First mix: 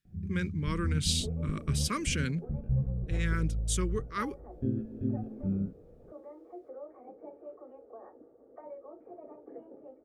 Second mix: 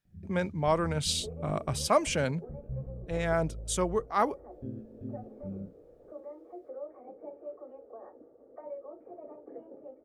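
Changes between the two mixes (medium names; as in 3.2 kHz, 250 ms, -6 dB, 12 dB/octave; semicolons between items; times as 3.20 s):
speech: remove Butterworth band-stop 730 Hz, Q 0.75; first sound -9.0 dB; master: add peaking EQ 570 Hz +4.5 dB 0.31 oct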